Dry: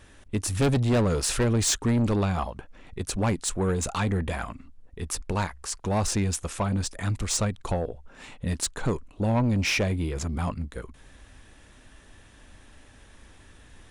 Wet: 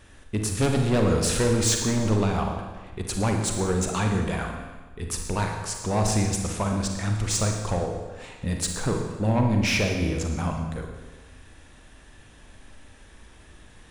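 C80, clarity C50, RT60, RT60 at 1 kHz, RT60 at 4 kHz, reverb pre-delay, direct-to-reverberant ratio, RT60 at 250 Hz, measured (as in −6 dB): 6.0 dB, 3.5 dB, 1.3 s, 1.3 s, 1.2 s, 37 ms, 2.5 dB, 1.3 s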